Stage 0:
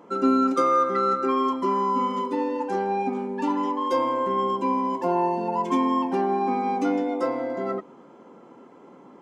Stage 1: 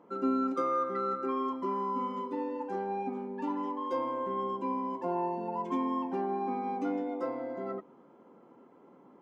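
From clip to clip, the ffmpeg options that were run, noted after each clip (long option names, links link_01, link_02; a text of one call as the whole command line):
ffmpeg -i in.wav -af "highshelf=frequency=3300:gain=-11.5,volume=-8.5dB" out.wav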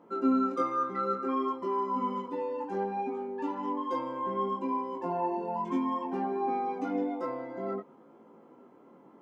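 ffmpeg -i in.wav -af "flanger=delay=17.5:depth=4.6:speed=0.61,volume=4.5dB" out.wav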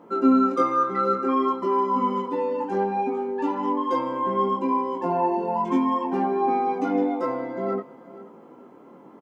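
ffmpeg -i in.wav -af "aecho=1:1:476:0.119,volume=8dB" out.wav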